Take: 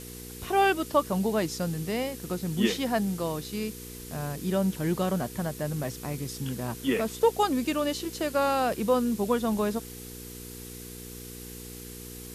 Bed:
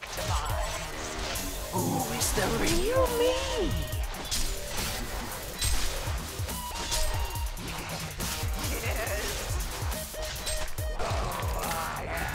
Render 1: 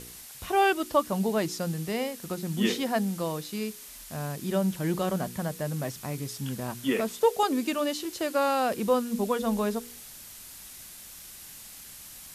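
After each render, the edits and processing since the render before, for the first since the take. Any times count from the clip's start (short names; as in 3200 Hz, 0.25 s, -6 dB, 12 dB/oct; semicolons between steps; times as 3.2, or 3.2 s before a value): de-hum 60 Hz, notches 8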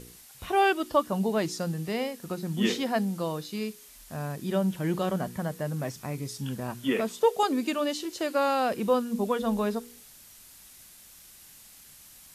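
noise print and reduce 6 dB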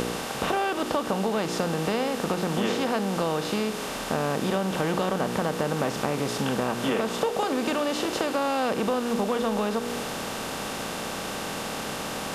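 per-bin compression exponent 0.4; compressor, threshold -22 dBFS, peak gain reduction 7.5 dB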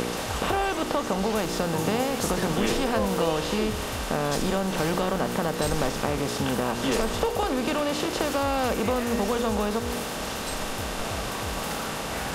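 add bed -4 dB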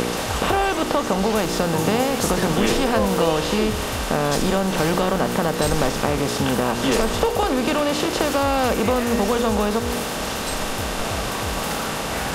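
gain +5.5 dB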